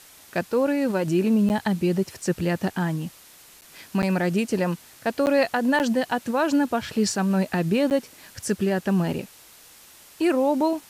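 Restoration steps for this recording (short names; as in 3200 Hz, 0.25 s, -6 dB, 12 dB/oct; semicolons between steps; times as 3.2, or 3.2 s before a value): interpolate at 1.49/3.61/4.02/5.26/5.79/7.9, 9.4 ms; denoiser 19 dB, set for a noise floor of -50 dBFS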